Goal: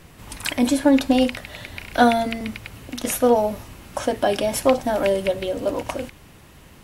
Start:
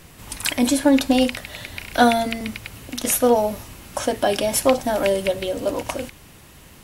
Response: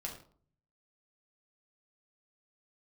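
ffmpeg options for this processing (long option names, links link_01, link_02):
-af "highshelf=frequency=3700:gain=-6.5"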